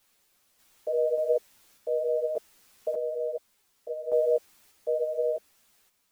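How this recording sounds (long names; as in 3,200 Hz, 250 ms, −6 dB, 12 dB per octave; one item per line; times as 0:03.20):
a quantiser's noise floor 10 bits, dither triangular
sample-and-hold tremolo 1.7 Hz, depth 75%
a shimmering, thickened sound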